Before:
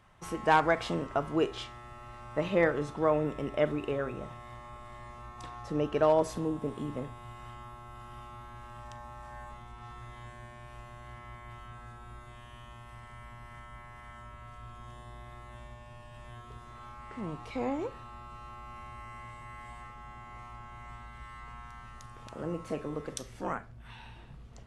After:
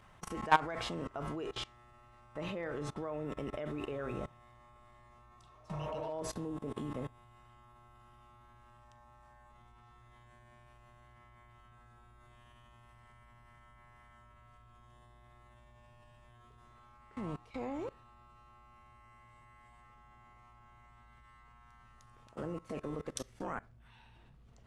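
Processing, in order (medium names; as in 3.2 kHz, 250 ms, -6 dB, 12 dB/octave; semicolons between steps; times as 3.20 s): spectral replace 5.40–6.08 s, 220–2600 Hz both; level held to a coarse grid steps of 21 dB; trim +3 dB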